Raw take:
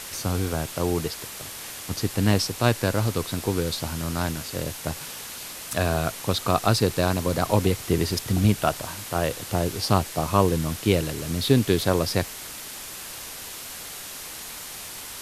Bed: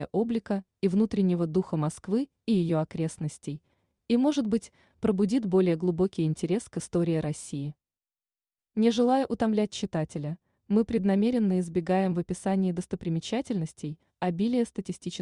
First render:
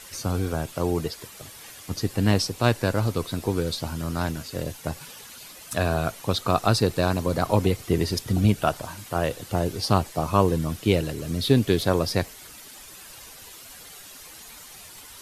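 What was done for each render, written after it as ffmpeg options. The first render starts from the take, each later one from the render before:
-af "afftdn=nr=10:nf=-38"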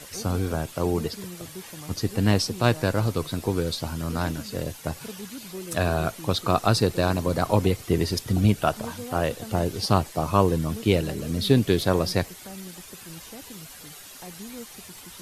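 -filter_complex "[1:a]volume=-14.5dB[a];[0:a][a]amix=inputs=2:normalize=0"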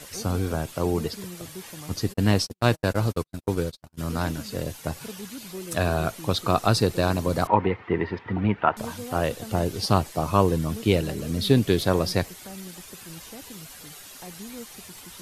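-filter_complex "[0:a]asplit=3[a][b][c];[a]afade=t=out:st=2.12:d=0.02[d];[b]agate=range=-53dB:threshold=-27dB:ratio=16:release=100:detection=peak,afade=t=in:st=2.12:d=0.02,afade=t=out:st=3.97:d=0.02[e];[c]afade=t=in:st=3.97:d=0.02[f];[d][e][f]amix=inputs=3:normalize=0,asettb=1/sr,asplit=3[g][h][i];[g]atrim=end=7.474[j];[h]atrim=start=7.47:end=8.77,asetpts=PTS-STARTPTS,afade=t=in:d=0.004:c=qsin,afade=t=out:st=1.296:d=0.004:c=qsin,highpass=120,equalizer=f=140:t=q:w=4:g=-10,equalizer=f=260:t=q:w=4:g=-3,equalizer=f=610:t=q:w=4:g=-4,equalizer=f=920:t=q:w=4:g=10,equalizer=f=1.3k:t=q:w=4:g=3,equalizer=f=1.9k:t=q:w=4:g=7,lowpass=f=2.5k:w=0.5412,lowpass=f=2.5k:w=1.3066[k];[i]atrim=start=8.766[l];[j][k]acrossfade=d=0.004:c1=hsin:c2=qsin[m];[m][l]acrossfade=d=0.004:c1=qsin:c2=hsin"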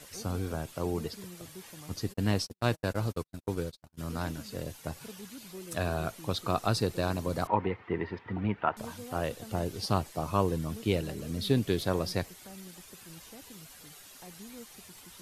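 -af "volume=-7.5dB"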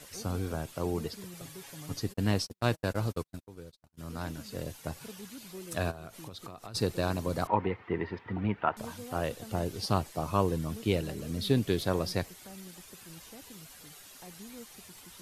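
-filter_complex "[0:a]asettb=1/sr,asplit=3[a][b][c];[a]atrim=end=1.334[d];[b]atrim=start=1.33:end=2,asetpts=PTS-STARTPTS,afade=t=in:d=0.004:c=qsin,afade=t=out:st=0.666:d=0.004:c=qsin,aecho=1:1:7.2:0.65,atrim=end_sample=29547[e];[c]atrim=start=1.996[f];[d][e]acrossfade=d=0.004:c1=hsin:c2=qsin[g];[g][f]acrossfade=d=0.004:c1=qsin:c2=hsin,asplit=3[h][i][j];[h]afade=t=out:st=5.9:d=0.02[k];[i]acompressor=threshold=-39dB:ratio=20:attack=3.2:release=140:knee=1:detection=peak,afade=t=in:st=5.9:d=0.02,afade=t=out:st=6.74:d=0.02[l];[j]afade=t=in:st=6.74:d=0.02[m];[k][l][m]amix=inputs=3:normalize=0,asplit=2[n][o];[n]atrim=end=3.44,asetpts=PTS-STARTPTS,afade=t=out:st=3.436:d=0.004:c=hsin:silence=0.0944061[p];[o]atrim=start=3.44,asetpts=PTS-STARTPTS,afade=t=in:d=1.18:silence=0.0944061[q];[p][q]concat=n=2:v=0:a=1"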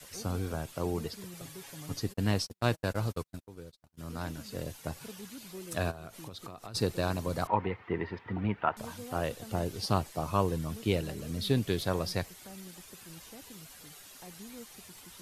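-af "adynamicequalizer=threshold=0.00891:dfrequency=310:dqfactor=0.94:tfrequency=310:tqfactor=0.94:attack=5:release=100:ratio=0.375:range=2:mode=cutabove:tftype=bell"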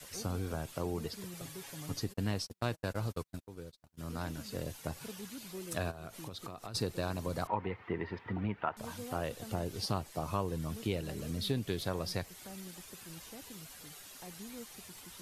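-af "acompressor=threshold=-34dB:ratio=2"

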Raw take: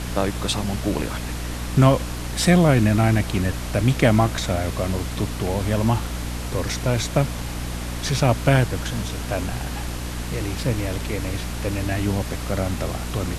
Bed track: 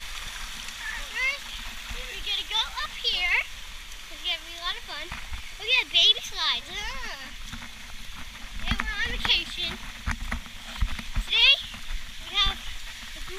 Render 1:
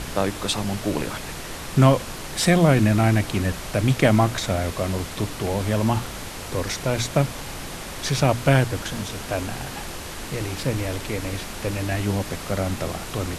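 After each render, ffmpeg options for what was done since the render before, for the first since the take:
-af "bandreject=f=60:t=h:w=6,bandreject=f=120:t=h:w=6,bandreject=f=180:t=h:w=6,bandreject=f=240:t=h:w=6,bandreject=f=300:t=h:w=6"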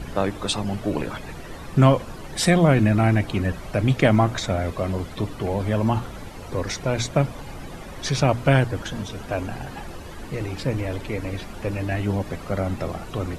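-af "afftdn=nr=13:nf=-35"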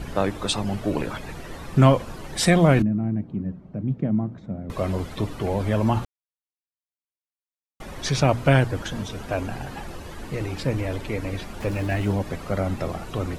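-filter_complex "[0:a]asettb=1/sr,asplit=3[a][b][c];[a]atrim=end=2.824[d];[b]atrim=start=2.82:end=4.7,asetpts=PTS-STARTPTS,afade=t=in:d=0.004:c=qsin,afade=t=out:st=1.876:d=0.004:c=qsin,bandpass=f=190:t=q:w=2.2[e];[c]atrim=start=4.696[f];[d][e]acrossfade=d=0.004:c1=hsin:c2=qsin[g];[g][f]acrossfade=d=0.004:c1=qsin:c2=hsin,asettb=1/sr,asplit=3[h][i][j];[h]atrim=end=11.604[k];[i]atrim=start=11.6:end=12.14,asetpts=PTS-STARTPTS,afade=t=in:d=0.004:c=qsin,afade=t=out:st=0.536:d=0.004:c=qsin,aeval=exprs='val(0)+0.5*0.0119*sgn(val(0))':c=same[l];[j]atrim=start=12.136[m];[k][l]acrossfade=d=0.004:c1=hsin:c2=qsin[n];[n][m]acrossfade=d=0.004:c1=qsin:c2=hsin,asplit=3[o][p][q];[o]atrim=end=6.05,asetpts=PTS-STARTPTS,afade=t=out:st=6.046:d=0.004:c=hsin[r];[p]atrim=start=6.05:end=7.8,asetpts=PTS-STARTPTS,volume=0[s];[q]atrim=start=7.8,asetpts=PTS-STARTPTS,afade=t=in:d=0.004:c=hsin[t];[r][s][t]concat=n=3:v=0:a=1"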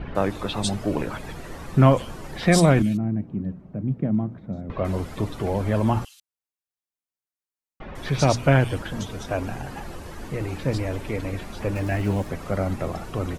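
-filter_complex "[0:a]acrossover=split=3400[a][b];[b]adelay=150[c];[a][c]amix=inputs=2:normalize=0"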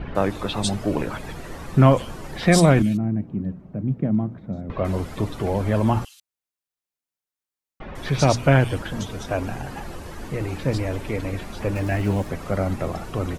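-af "volume=1.5dB,alimiter=limit=-2dB:level=0:latency=1"

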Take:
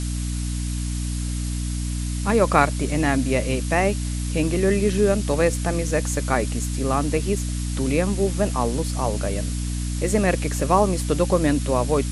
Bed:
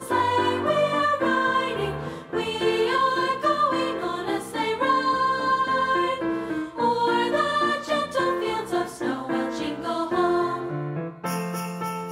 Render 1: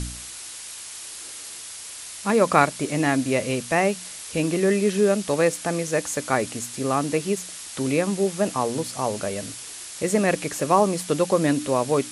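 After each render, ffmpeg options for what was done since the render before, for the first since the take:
-af "bandreject=f=60:t=h:w=4,bandreject=f=120:t=h:w=4,bandreject=f=180:t=h:w=4,bandreject=f=240:t=h:w=4,bandreject=f=300:t=h:w=4"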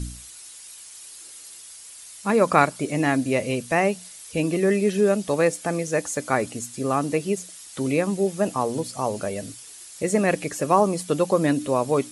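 -af "afftdn=nr=10:nf=-38"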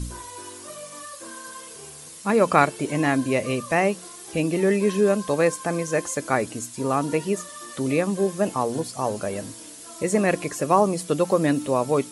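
-filter_complex "[1:a]volume=-19dB[a];[0:a][a]amix=inputs=2:normalize=0"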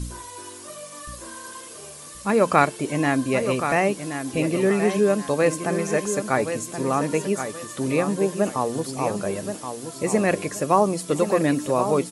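-af "aecho=1:1:1075|2150|3225|4300:0.376|0.117|0.0361|0.0112"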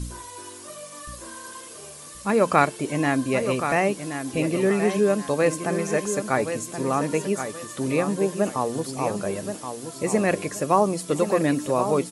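-af "volume=-1dB"

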